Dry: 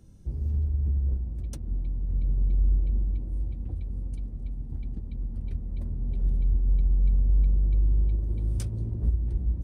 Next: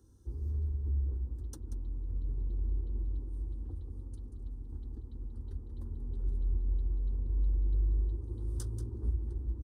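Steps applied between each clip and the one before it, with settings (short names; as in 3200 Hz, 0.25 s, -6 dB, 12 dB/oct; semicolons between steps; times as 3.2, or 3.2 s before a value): HPF 56 Hz; fixed phaser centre 630 Hz, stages 6; echo 0.185 s -10.5 dB; gain -3 dB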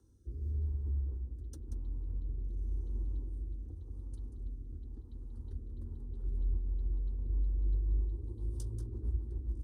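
spectral gain 7.67–8.74, 1200–2600 Hz -8 dB; rotary speaker horn 0.9 Hz, later 7.5 Hz, at 5.63; diffused feedback echo 1.238 s, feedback 45%, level -16 dB; gain -1 dB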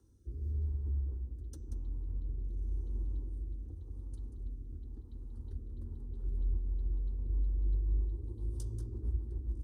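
de-hum 245.5 Hz, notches 34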